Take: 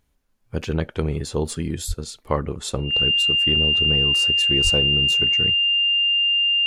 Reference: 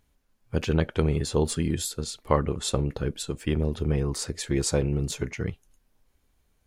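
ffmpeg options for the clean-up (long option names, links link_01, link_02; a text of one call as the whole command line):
ffmpeg -i in.wav -filter_complex "[0:a]bandreject=frequency=2800:width=30,asplit=3[link_01][link_02][link_03];[link_01]afade=type=out:start_time=1.87:duration=0.02[link_04];[link_02]highpass=frequency=140:width=0.5412,highpass=frequency=140:width=1.3066,afade=type=in:start_time=1.87:duration=0.02,afade=type=out:start_time=1.99:duration=0.02[link_05];[link_03]afade=type=in:start_time=1.99:duration=0.02[link_06];[link_04][link_05][link_06]amix=inputs=3:normalize=0,asplit=3[link_07][link_08][link_09];[link_07]afade=type=out:start_time=4.63:duration=0.02[link_10];[link_08]highpass=frequency=140:width=0.5412,highpass=frequency=140:width=1.3066,afade=type=in:start_time=4.63:duration=0.02,afade=type=out:start_time=4.75:duration=0.02[link_11];[link_09]afade=type=in:start_time=4.75:duration=0.02[link_12];[link_10][link_11][link_12]amix=inputs=3:normalize=0" out.wav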